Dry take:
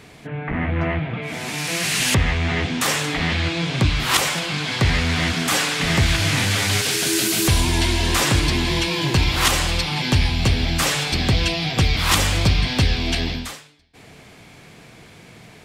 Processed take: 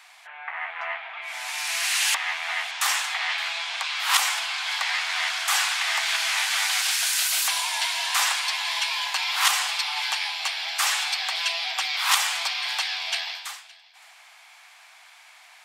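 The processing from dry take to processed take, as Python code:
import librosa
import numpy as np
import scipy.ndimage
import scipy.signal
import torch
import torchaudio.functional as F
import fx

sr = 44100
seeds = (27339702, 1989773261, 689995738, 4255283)

y = scipy.signal.sosfilt(scipy.signal.butter(8, 750.0, 'highpass', fs=sr, output='sos'), x)
y = y + 10.0 ** (-22.5 / 20.0) * np.pad(y, (int(567 * sr / 1000.0), 0))[:len(y)]
y = y * librosa.db_to_amplitude(-2.0)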